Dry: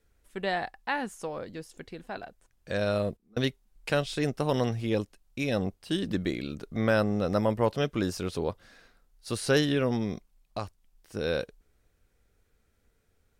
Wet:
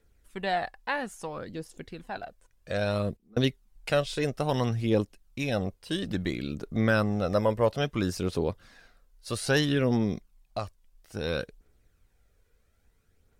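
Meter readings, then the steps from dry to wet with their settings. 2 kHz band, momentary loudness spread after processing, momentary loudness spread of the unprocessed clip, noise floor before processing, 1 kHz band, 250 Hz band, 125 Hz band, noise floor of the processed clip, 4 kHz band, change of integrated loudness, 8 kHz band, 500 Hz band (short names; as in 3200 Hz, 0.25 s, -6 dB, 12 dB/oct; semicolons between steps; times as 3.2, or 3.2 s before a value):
+1.0 dB, 15 LU, 16 LU, -71 dBFS, +1.0 dB, +0.5 dB, +2.0 dB, -68 dBFS, +1.0 dB, +0.5 dB, +0.5 dB, 0.0 dB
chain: phaser 0.6 Hz, delay 2.1 ms, feedback 37%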